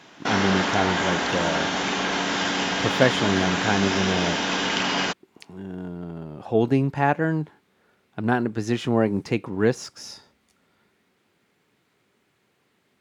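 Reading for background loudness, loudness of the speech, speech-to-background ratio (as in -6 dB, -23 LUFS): -24.0 LUFS, -25.0 LUFS, -1.0 dB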